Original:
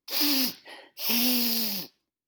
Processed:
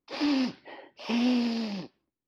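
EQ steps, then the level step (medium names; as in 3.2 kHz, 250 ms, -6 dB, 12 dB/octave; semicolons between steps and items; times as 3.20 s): tape spacing loss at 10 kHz 38 dB; +5.5 dB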